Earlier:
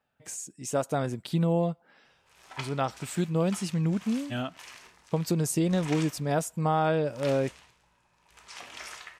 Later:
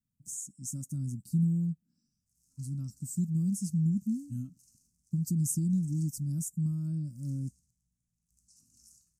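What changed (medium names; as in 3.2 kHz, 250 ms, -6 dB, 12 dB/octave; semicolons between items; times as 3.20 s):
background -8.5 dB; master: add inverse Chebyshev band-stop 420–3600 Hz, stop band 40 dB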